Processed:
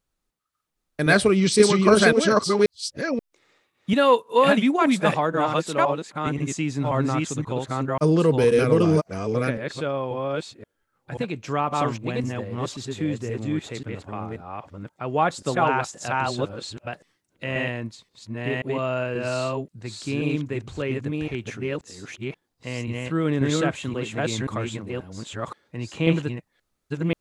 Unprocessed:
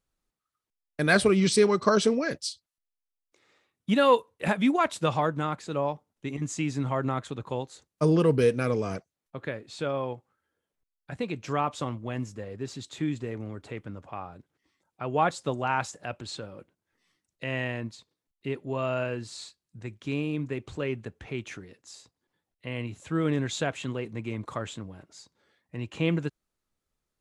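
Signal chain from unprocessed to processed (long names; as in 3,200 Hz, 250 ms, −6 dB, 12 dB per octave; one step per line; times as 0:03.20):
delay that plays each chunk backwards 532 ms, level −0.5 dB
0:03.93–0:06.27: high-pass filter 150 Hz
level +3 dB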